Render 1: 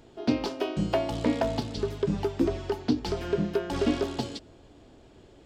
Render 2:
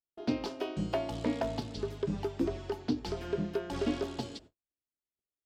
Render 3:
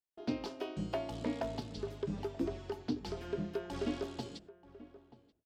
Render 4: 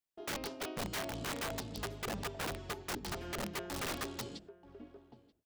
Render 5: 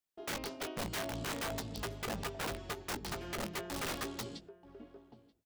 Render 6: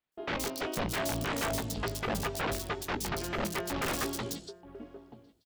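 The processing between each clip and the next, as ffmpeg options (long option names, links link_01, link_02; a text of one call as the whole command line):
ffmpeg -i in.wav -af "agate=range=-48dB:threshold=-46dB:ratio=16:detection=peak,volume=-6dB" out.wav
ffmpeg -i in.wav -filter_complex "[0:a]asplit=2[link_01][link_02];[link_02]adelay=932.9,volume=-17dB,highshelf=frequency=4000:gain=-21[link_03];[link_01][link_03]amix=inputs=2:normalize=0,volume=-4.5dB" out.wav
ffmpeg -i in.wav -af "aeval=exprs='(mod(47.3*val(0)+1,2)-1)/47.3':channel_layout=same,volume=1dB" out.wav
ffmpeg -i in.wav -filter_complex "[0:a]asplit=2[link_01][link_02];[link_02]adelay=18,volume=-10.5dB[link_03];[link_01][link_03]amix=inputs=2:normalize=0" out.wav
ffmpeg -i in.wav -filter_complex "[0:a]acrossover=split=3900[link_01][link_02];[link_02]adelay=120[link_03];[link_01][link_03]amix=inputs=2:normalize=0,volume=6.5dB" out.wav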